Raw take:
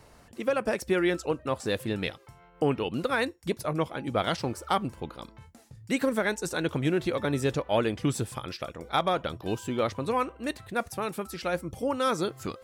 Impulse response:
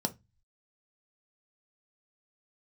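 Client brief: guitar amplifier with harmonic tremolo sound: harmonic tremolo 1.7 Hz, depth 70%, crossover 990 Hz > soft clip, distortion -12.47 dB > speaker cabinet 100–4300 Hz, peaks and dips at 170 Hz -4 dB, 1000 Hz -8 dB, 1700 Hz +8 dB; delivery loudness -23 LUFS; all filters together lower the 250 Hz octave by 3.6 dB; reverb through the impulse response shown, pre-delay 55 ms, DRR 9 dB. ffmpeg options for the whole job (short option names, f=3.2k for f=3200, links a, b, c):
-filter_complex "[0:a]equalizer=f=250:t=o:g=-4,asplit=2[a][b];[1:a]atrim=start_sample=2205,adelay=55[c];[b][c]afir=irnorm=-1:irlink=0,volume=-13dB[d];[a][d]amix=inputs=2:normalize=0,acrossover=split=990[e][f];[e]aeval=exprs='val(0)*(1-0.7/2+0.7/2*cos(2*PI*1.7*n/s))':c=same[g];[f]aeval=exprs='val(0)*(1-0.7/2-0.7/2*cos(2*PI*1.7*n/s))':c=same[h];[g][h]amix=inputs=2:normalize=0,asoftclip=threshold=-26.5dB,highpass=100,equalizer=f=170:t=q:w=4:g=-4,equalizer=f=1k:t=q:w=4:g=-8,equalizer=f=1.7k:t=q:w=4:g=8,lowpass=f=4.3k:w=0.5412,lowpass=f=4.3k:w=1.3066,volume=12.5dB"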